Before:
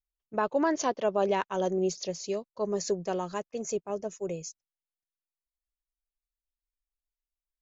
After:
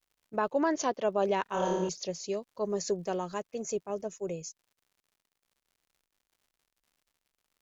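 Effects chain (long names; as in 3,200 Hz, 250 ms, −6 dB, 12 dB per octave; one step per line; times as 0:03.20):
0:01.43–0:01.89: flutter between parallel walls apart 4.8 metres, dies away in 1.1 s
surface crackle 130 per second −56 dBFS
level −1.5 dB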